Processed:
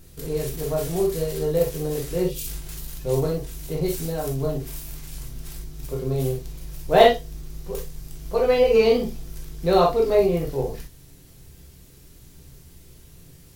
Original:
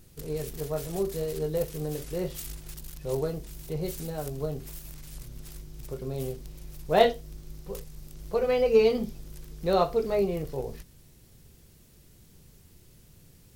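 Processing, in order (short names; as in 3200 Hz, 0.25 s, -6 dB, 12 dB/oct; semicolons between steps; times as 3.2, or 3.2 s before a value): spectral gain 2.23–2.47, 570–2300 Hz -11 dB; non-linear reverb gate 80 ms flat, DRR -0.5 dB; gain +3.5 dB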